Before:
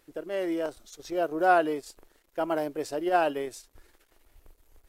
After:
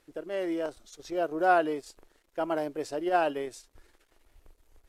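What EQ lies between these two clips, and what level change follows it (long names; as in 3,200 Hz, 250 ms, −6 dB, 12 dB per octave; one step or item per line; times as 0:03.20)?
Bessel low-pass filter 10,000 Hz, order 2
−1.5 dB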